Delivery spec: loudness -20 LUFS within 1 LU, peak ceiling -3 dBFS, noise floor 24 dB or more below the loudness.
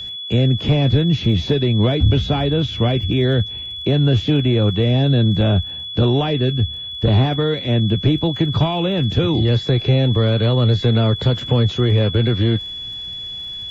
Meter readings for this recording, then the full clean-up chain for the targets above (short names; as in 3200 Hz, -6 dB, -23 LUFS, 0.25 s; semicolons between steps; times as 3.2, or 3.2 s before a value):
ticks 35/s; steady tone 3400 Hz; tone level -27 dBFS; loudness -17.5 LUFS; peak -5.5 dBFS; loudness target -20.0 LUFS
-> de-click; notch 3400 Hz, Q 30; gain -2.5 dB